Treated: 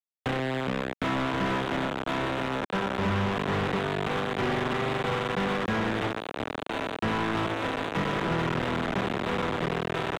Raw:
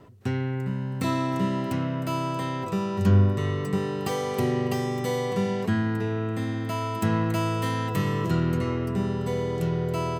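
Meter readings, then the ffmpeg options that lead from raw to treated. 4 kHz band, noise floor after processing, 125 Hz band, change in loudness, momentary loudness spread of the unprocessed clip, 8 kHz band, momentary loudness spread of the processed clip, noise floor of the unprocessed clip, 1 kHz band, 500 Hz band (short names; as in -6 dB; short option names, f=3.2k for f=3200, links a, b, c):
+4.0 dB, -39 dBFS, -8.0 dB, -2.0 dB, 5 LU, -5.5 dB, 3 LU, -31 dBFS, +1.5 dB, -1.0 dB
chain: -filter_complex "[0:a]aecho=1:1:423|846:0.355|0.0568,aresample=8000,aeval=exprs='val(0)*gte(abs(val(0)),0.0708)':c=same,aresample=44100,acrossover=split=320|970[a][b][c];[a]acompressor=threshold=-26dB:ratio=4[d];[b]acompressor=threshold=-43dB:ratio=4[e];[c]acompressor=threshold=-36dB:ratio=4[f];[d][e][f]amix=inputs=3:normalize=0,asplit=2[g][h];[h]highpass=f=720:p=1,volume=29dB,asoftclip=type=tanh:threshold=-15.5dB[i];[g][i]amix=inputs=2:normalize=0,lowpass=f=1.3k:p=1,volume=-6dB,volume=-2.5dB"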